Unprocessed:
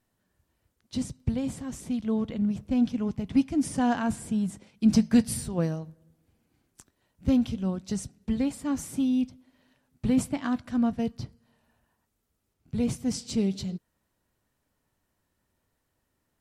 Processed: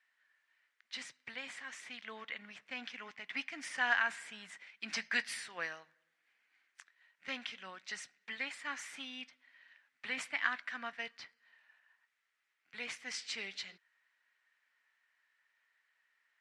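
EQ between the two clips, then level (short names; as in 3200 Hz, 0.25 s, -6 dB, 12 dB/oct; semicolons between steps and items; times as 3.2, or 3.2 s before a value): resonant high-pass 1900 Hz, resonance Q 3.3; tape spacing loss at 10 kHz 28 dB; high shelf 7000 Hz +7.5 dB; +6.5 dB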